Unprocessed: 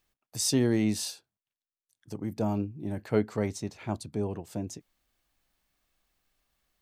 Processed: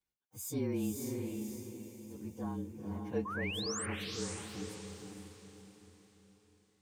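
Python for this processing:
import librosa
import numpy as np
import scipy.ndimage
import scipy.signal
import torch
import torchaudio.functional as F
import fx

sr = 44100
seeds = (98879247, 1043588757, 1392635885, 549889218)

p1 = fx.partial_stretch(x, sr, pct=111)
p2 = fx.notch_comb(p1, sr, f0_hz=660.0)
p3 = fx.spec_paint(p2, sr, seeds[0], shape='rise', start_s=3.25, length_s=0.61, low_hz=1000.0, high_hz=9600.0, level_db=-32.0)
p4 = p3 + fx.echo_diffused(p3, sr, ms=499, feedback_pct=42, wet_db=-3.5, dry=0)
y = p4 * 10.0 ** (-8.5 / 20.0)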